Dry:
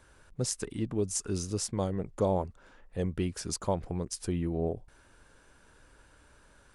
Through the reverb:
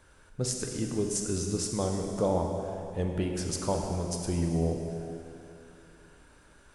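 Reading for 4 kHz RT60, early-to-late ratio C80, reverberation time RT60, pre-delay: 2.6 s, 4.0 dB, 2.8 s, 7 ms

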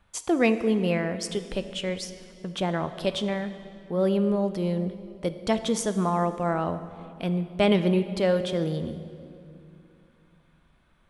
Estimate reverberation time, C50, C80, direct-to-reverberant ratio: 2.6 s, 11.5 dB, 12.5 dB, 10.0 dB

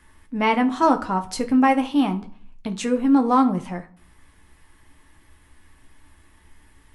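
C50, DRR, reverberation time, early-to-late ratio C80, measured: 15.0 dB, 5.0 dB, 0.50 s, 21.0 dB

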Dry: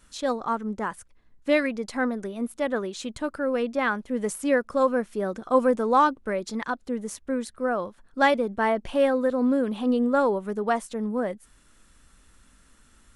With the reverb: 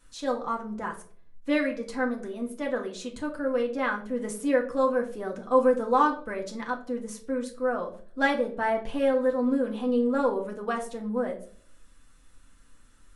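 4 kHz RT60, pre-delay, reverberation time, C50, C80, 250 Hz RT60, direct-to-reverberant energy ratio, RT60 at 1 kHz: 0.35 s, 4 ms, 0.50 s, 11.5 dB, 16.5 dB, 0.65 s, 0.5 dB, 0.40 s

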